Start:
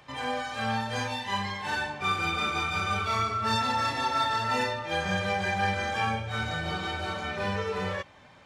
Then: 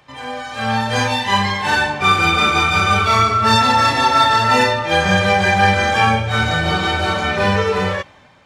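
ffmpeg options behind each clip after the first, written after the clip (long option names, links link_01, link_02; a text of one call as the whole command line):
ffmpeg -i in.wav -af "dynaudnorm=framelen=130:gausssize=11:maxgain=12dB,volume=2.5dB" out.wav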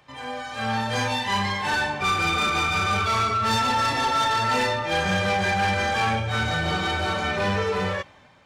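ffmpeg -i in.wav -af "asoftclip=type=tanh:threshold=-13dB,volume=-5dB" out.wav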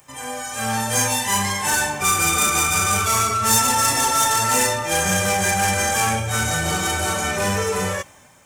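ffmpeg -i in.wav -af "aexciter=amount=9.4:drive=6.9:freq=6200,volume=2dB" out.wav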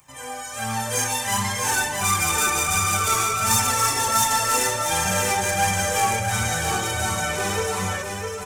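ffmpeg -i in.wav -af "flanger=delay=0.8:depth=1.9:regen=38:speed=1.4:shape=triangular,aecho=1:1:655:0.596" out.wav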